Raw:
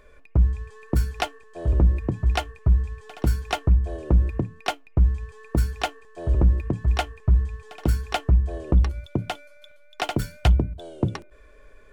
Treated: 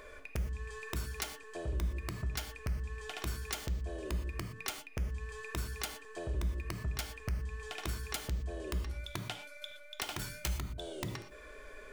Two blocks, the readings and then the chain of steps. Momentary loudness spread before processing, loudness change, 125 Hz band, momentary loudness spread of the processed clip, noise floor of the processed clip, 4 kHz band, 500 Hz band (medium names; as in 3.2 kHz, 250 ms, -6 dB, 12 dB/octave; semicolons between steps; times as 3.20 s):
9 LU, -15.0 dB, -16.5 dB, 6 LU, -52 dBFS, -7.0 dB, -11.5 dB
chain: tone controls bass -10 dB, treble +1 dB; integer overflow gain 17 dB; peak limiter -23.5 dBFS, peak gain reduction 6.5 dB; compression 4:1, threshold -41 dBFS, peak gain reduction 13 dB; dynamic bell 710 Hz, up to -8 dB, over -59 dBFS, Q 0.79; gated-style reverb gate 140 ms flat, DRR 6.5 dB; trim +5.5 dB